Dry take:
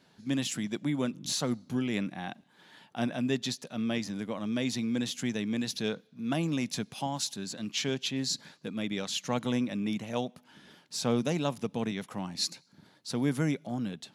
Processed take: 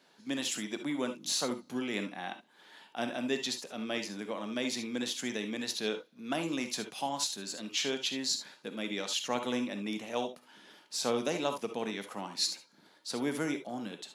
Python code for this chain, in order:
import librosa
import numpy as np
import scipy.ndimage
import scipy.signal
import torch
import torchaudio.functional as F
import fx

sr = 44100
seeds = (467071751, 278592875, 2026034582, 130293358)

y = scipy.signal.sosfilt(scipy.signal.butter(2, 320.0, 'highpass', fs=sr, output='sos'), x)
y = fx.rev_gated(y, sr, seeds[0], gate_ms=90, shape='rising', drr_db=7.0)